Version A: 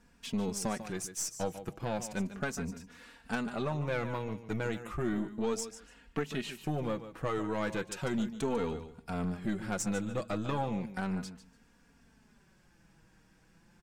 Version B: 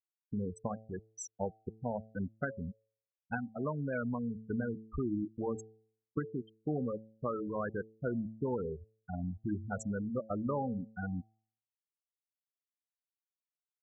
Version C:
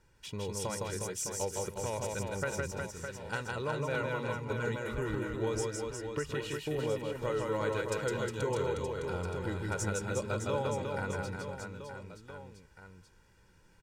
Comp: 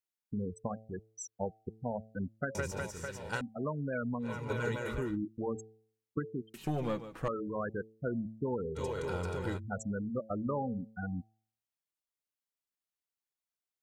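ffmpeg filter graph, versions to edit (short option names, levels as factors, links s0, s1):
-filter_complex "[2:a]asplit=3[s0][s1][s2];[1:a]asplit=5[s3][s4][s5][s6][s7];[s3]atrim=end=2.552[s8];[s0]atrim=start=2.548:end=3.412[s9];[s4]atrim=start=3.408:end=4.43[s10];[s1]atrim=start=4.19:end=5.18[s11];[s5]atrim=start=4.94:end=6.542[s12];[0:a]atrim=start=6.538:end=7.282[s13];[s6]atrim=start=7.278:end=8.79[s14];[s2]atrim=start=8.75:end=9.6[s15];[s7]atrim=start=9.56[s16];[s8][s9]acrossfade=d=0.004:c1=hsin:c2=hsin[s17];[s17][s10]acrossfade=d=0.004:c1=hsin:c2=hsin[s18];[s18][s11]acrossfade=d=0.24:c1=tri:c2=tri[s19];[s19][s12]acrossfade=d=0.24:c1=tri:c2=tri[s20];[s20][s13]acrossfade=d=0.004:c1=hsin:c2=hsin[s21];[s21][s14]acrossfade=d=0.004:c1=hsin:c2=hsin[s22];[s22][s15]acrossfade=d=0.04:c1=tri:c2=tri[s23];[s23][s16]acrossfade=d=0.04:c1=tri:c2=tri"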